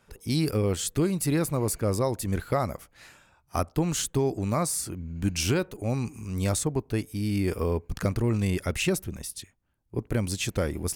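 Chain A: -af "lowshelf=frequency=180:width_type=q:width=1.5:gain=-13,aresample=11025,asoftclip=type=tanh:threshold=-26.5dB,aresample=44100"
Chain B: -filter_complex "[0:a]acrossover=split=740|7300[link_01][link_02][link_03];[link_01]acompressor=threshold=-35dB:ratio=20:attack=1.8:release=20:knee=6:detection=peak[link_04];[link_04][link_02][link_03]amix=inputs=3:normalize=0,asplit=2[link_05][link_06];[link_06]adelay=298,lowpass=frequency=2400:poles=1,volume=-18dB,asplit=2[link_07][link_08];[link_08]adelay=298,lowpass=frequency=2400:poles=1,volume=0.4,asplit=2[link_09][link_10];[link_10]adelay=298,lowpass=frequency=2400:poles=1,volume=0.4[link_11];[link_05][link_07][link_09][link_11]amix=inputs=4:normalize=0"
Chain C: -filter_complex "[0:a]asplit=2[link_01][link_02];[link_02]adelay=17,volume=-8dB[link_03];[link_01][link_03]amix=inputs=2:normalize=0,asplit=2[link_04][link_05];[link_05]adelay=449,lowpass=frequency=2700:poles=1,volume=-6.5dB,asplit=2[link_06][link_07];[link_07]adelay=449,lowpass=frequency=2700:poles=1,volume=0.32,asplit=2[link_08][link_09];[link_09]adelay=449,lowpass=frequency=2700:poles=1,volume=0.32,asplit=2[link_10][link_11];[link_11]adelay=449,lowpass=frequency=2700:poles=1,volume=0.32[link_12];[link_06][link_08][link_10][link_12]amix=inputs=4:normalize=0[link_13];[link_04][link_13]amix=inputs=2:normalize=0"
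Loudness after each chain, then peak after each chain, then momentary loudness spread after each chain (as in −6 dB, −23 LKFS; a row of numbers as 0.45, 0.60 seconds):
−34.0, −33.5, −27.0 LKFS; −24.0, −15.0, −11.0 dBFS; 10, 9, 8 LU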